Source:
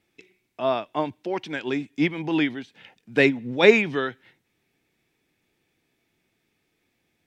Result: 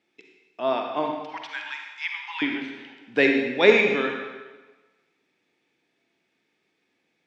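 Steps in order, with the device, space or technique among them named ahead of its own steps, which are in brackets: 1.21–2.42 steep high-pass 840 Hz 96 dB/oct; supermarket ceiling speaker (BPF 230–5800 Hz; reverb RT60 1.3 s, pre-delay 41 ms, DRR 2.5 dB); gain -1 dB

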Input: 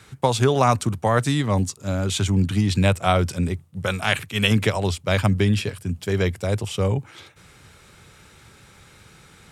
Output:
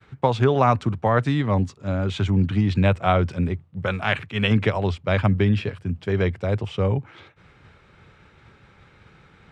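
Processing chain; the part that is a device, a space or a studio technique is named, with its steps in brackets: hearing-loss simulation (LPF 2600 Hz 12 dB/oct; expander -48 dBFS)

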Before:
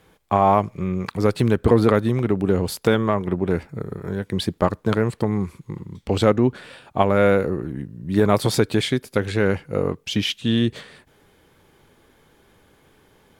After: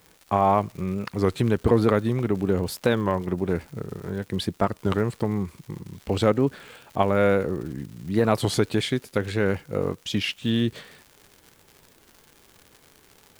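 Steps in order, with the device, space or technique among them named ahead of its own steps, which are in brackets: warped LP (record warp 33 1/3 rpm, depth 160 cents; crackle 140/s -33 dBFS; white noise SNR 38 dB); gain -3.5 dB

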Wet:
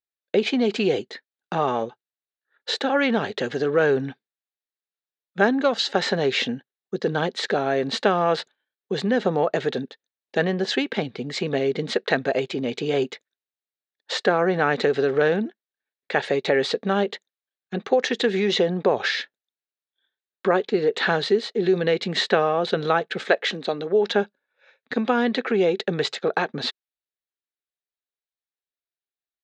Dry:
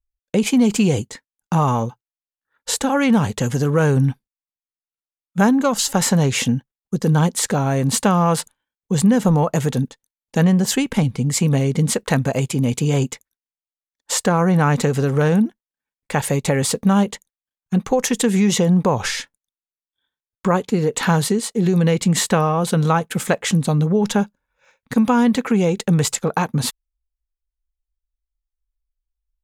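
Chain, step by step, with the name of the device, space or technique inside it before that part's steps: phone earpiece (speaker cabinet 340–4400 Hz, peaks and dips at 390 Hz +8 dB, 660 Hz +4 dB, 990 Hz -8 dB, 1700 Hz +6 dB, 3900 Hz +7 dB); 23.24–24.1 HPF 250 Hz 12 dB/oct; gain -2 dB

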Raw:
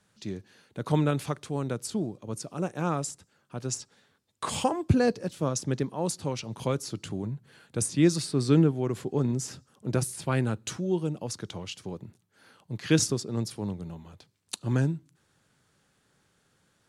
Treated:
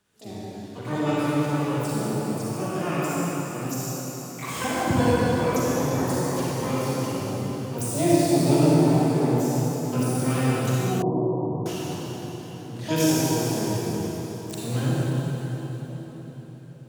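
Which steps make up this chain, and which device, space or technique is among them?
shimmer-style reverb (harmoniser +12 st -4 dB; reverb RT60 4.7 s, pre-delay 36 ms, DRR -8 dB); 11.02–11.66 steep low-pass 1100 Hz 96 dB/oct; gain -6 dB

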